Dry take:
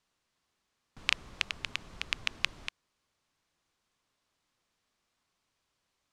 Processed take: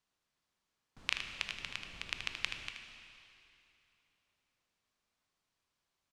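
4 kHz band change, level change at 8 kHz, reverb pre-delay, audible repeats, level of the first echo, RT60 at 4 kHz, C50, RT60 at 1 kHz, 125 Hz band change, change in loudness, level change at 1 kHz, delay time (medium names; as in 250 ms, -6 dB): -5.0 dB, -5.0 dB, 7 ms, 1, -8.0 dB, 2.7 s, 4.5 dB, 2.9 s, -5.0 dB, -5.0 dB, -5.0 dB, 78 ms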